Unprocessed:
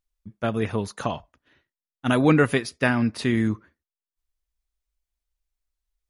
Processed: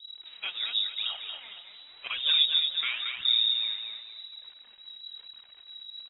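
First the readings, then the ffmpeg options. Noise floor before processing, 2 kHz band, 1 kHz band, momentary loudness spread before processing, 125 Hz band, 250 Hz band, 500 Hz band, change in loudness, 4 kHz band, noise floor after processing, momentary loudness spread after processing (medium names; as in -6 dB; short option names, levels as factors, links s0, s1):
under -85 dBFS, -8.5 dB, -17.5 dB, 12 LU, under -40 dB, under -40 dB, under -30 dB, -2.5 dB, +16.0 dB, -54 dBFS, 22 LU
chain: -filter_complex "[0:a]aeval=exprs='val(0)+0.5*0.02*sgn(val(0))':c=same,acrossover=split=680[s0][s1];[s0]aeval=exprs='val(0)*(1-1/2+1/2*cos(2*PI*1.2*n/s))':c=same[s2];[s1]aeval=exprs='val(0)*(1-1/2-1/2*cos(2*PI*1.2*n/s))':c=same[s3];[s2][s3]amix=inputs=2:normalize=0,deesser=0.9,aecho=1:1:228|456|684|912|1140:0.531|0.202|0.0767|0.0291|0.0111,lowpass=f=3300:t=q:w=0.5098,lowpass=f=3300:t=q:w=0.6013,lowpass=f=3300:t=q:w=0.9,lowpass=f=3300:t=q:w=2.563,afreqshift=-3900,flanger=delay=0.5:depth=5.4:regen=35:speed=0.93:shape=triangular,volume=1.12"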